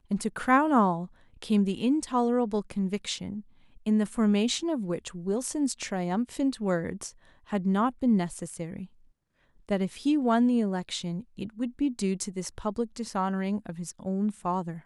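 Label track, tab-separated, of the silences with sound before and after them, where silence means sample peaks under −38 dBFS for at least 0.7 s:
8.850000	9.690000	silence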